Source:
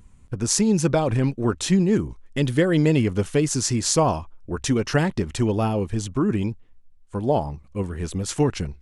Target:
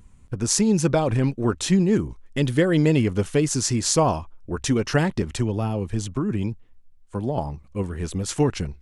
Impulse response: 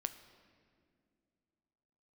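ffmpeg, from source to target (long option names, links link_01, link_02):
-filter_complex "[0:a]asettb=1/sr,asplit=3[link_01][link_02][link_03];[link_01]atrim=end=5.224[link_04];[link_02]atrim=start=5.22:end=7.38,asetpts=PTS-STARTPTS,afade=type=in:duration=0.004:curve=qsin,afade=type=out:start_time=2.156:duration=0.004:curve=qsin,acrossover=split=180[link_05][link_06];[link_06]acompressor=threshold=-25dB:ratio=6[link_07];[link_05][link_07]amix=inputs=2:normalize=0[link_08];[link_03]atrim=start=7.376[link_09];[link_04][link_08]acrossfade=duration=0.004:curve1=hsin:curve2=qsin[link_10];[link_10][link_09]acrossfade=duration=0.004:curve1=qsin:curve2=hsin"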